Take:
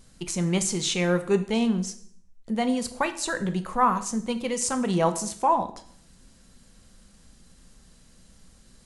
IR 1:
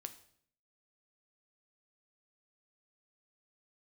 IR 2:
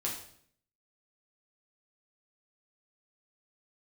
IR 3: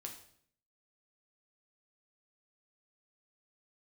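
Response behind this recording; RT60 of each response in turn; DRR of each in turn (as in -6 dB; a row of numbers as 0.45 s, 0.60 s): 1; 0.60 s, 0.60 s, 0.60 s; 8.5 dB, -3.5 dB, 1.5 dB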